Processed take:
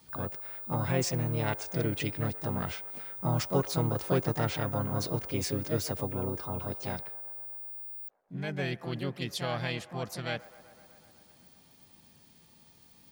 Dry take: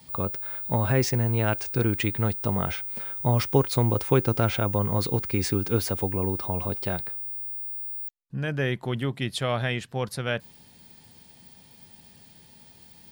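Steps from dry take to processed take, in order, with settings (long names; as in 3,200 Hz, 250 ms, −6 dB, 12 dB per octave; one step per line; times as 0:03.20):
dynamic equaliser 5,300 Hz, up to +5 dB, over −49 dBFS, Q 1.8
pitch-shifted copies added +5 semitones −4 dB
delay with a band-pass on its return 125 ms, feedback 77%, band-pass 880 Hz, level −18 dB
level −8 dB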